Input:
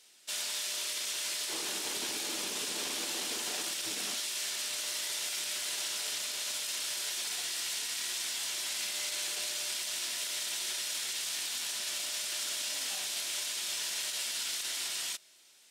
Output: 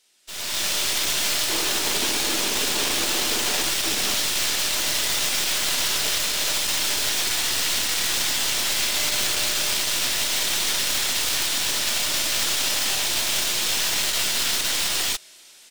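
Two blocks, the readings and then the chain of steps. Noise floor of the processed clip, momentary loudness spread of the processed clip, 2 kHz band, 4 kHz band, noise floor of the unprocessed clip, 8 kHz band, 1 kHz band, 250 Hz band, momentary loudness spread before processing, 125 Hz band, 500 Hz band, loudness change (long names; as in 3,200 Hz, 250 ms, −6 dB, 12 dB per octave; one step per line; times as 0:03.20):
−48 dBFS, 1 LU, +13.5 dB, +12.0 dB, −58 dBFS, +10.5 dB, +15.0 dB, +15.0 dB, 1 LU, can't be measured, +14.5 dB, +12.0 dB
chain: stylus tracing distortion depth 0.067 ms
automatic gain control gain up to 16 dB
level −3.5 dB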